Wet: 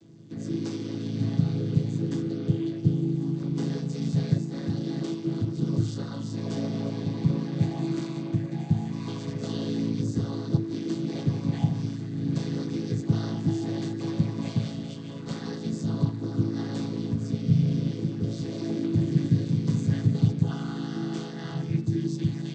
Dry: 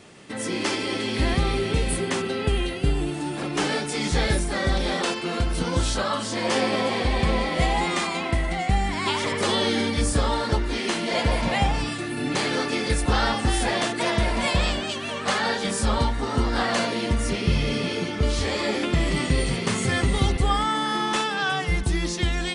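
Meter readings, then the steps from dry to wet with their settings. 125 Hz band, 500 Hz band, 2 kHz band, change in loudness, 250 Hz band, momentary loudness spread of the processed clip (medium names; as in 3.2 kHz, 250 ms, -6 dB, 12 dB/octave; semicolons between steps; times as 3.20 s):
+2.0 dB, -9.5 dB, -21.5 dB, -4.0 dB, 0.0 dB, 8 LU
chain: vocoder on a held chord major triad, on A2; high-order bell 1.2 kHz -13 dB 2.9 oct; de-hum 439.4 Hz, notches 39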